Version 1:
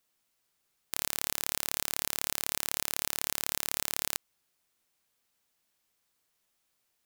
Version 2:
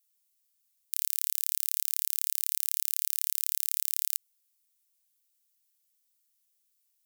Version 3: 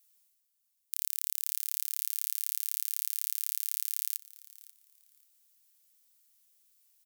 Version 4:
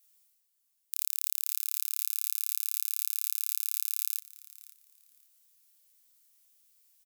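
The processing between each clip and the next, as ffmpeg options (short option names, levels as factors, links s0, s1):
-af "aderivative"
-af "areverse,acompressor=mode=upward:threshold=0.00224:ratio=2.5,areverse,aecho=1:1:536|1072:0.106|0.0222,volume=0.668"
-filter_complex "[0:a]asplit=2[s0][s1];[s1]adelay=27,volume=0.708[s2];[s0][s2]amix=inputs=2:normalize=0"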